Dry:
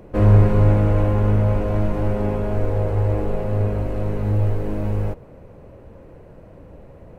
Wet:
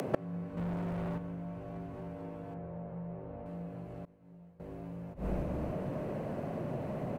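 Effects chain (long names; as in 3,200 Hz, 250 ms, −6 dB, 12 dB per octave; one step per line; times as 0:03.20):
frequency shifter +70 Hz
high-pass filter 120 Hz 24 dB per octave
echo with shifted repeats 299 ms, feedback 53%, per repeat −120 Hz, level −19 dB
gate with flip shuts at −18 dBFS, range −34 dB
upward compression, threshold −39 dBFS
0:00.57–0:01.18: leveller curve on the samples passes 3
0:02.54–0:03.46: Bessel low-pass filter 1,800 Hz
0:04.05–0:04.60: downward expander −37 dBFS
level +5.5 dB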